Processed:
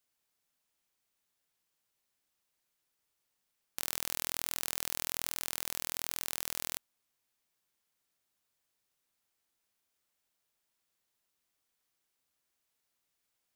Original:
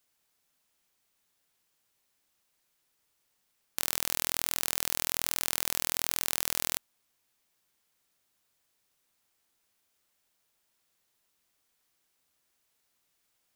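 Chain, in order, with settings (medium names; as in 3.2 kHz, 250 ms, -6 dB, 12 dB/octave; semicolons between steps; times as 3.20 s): 3.79–5.29 s: level flattener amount 50%; trim -6.5 dB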